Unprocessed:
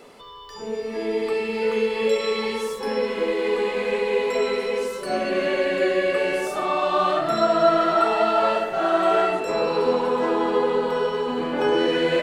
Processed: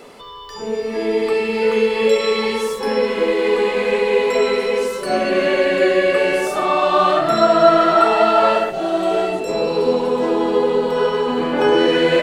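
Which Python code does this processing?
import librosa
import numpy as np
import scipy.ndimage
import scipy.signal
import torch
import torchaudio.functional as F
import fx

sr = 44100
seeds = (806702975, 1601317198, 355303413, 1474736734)

y = fx.peak_eq(x, sr, hz=1400.0, db=fx.line((8.7, -14.5), (10.97, -6.0)), octaves=1.6, at=(8.7, 10.97), fade=0.02)
y = y * 10.0 ** (6.0 / 20.0)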